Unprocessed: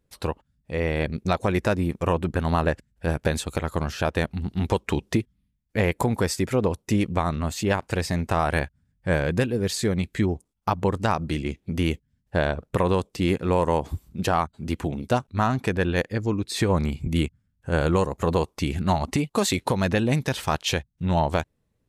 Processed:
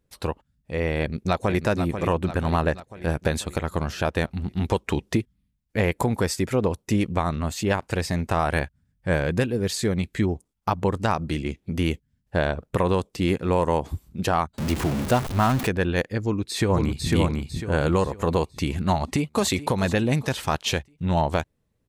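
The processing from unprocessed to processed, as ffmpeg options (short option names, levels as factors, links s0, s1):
-filter_complex "[0:a]asplit=2[s0][s1];[s1]afade=t=in:st=1:d=0.01,afade=t=out:st=1.63:d=0.01,aecho=0:1:490|980|1470|1960|2450|2940|3430:0.398107|0.218959|0.120427|0.0662351|0.0364293|0.0200361|0.0110199[s2];[s0][s2]amix=inputs=2:normalize=0,asettb=1/sr,asplit=3[s3][s4][s5];[s3]atrim=end=14.584[s6];[s4]atrim=start=14.58:end=15.67,asetpts=PTS-STARTPTS,afade=t=in:d=0.004:c=qsin,afade=t=out:st=1.086:d=0.004:c=qsin,aeval=exprs='val(0)+0.5*0.0596*sgn(val(0))':c=same[s7];[s5]atrim=start=15.666[s8];[s6][s7]acrossfade=d=0.004:c1=hsin:c2=qsin[s9];[s9][s8]acrossfade=d=0.004:c1=qsin:c2=hsin,asplit=2[s10][s11];[s11]afade=t=in:st=16.2:d=0.01,afade=t=out:st=17.1:d=0.01,aecho=0:1:500|1000|1500|2000|2500:0.794328|0.278015|0.0973052|0.0340568|0.0119199[s12];[s10][s12]amix=inputs=2:normalize=0,asplit=2[s13][s14];[s14]afade=t=in:st=18.92:d=0.01,afade=t=out:st=19.49:d=0.01,aecho=0:1:430|860|1290|1720:0.177828|0.0800226|0.0360102|0.0162046[s15];[s13][s15]amix=inputs=2:normalize=0"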